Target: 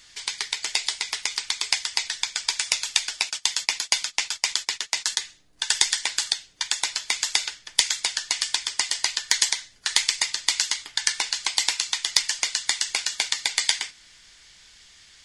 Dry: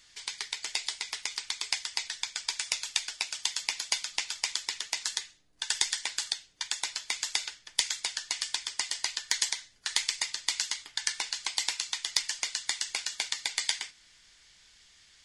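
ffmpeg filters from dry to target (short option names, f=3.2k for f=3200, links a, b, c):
-filter_complex "[0:a]asplit=3[a][b][c];[a]afade=t=out:st=3.28:d=0.02[d];[b]agate=range=-16dB:threshold=-37dB:ratio=16:detection=peak,afade=t=in:st=3.28:d=0.02,afade=t=out:st=5.21:d=0.02[e];[c]afade=t=in:st=5.21:d=0.02[f];[d][e][f]amix=inputs=3:normalize=0,volume=7.5dB"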